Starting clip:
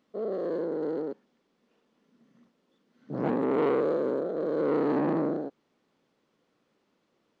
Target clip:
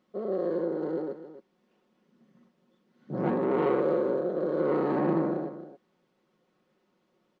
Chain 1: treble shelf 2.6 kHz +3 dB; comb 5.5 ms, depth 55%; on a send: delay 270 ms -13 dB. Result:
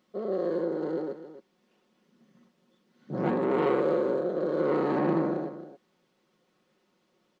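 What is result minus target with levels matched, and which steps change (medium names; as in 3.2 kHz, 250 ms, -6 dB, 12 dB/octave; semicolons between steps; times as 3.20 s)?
4 kHz band +5.0 dB
change: treble shelf 2.6 kHz -5 dB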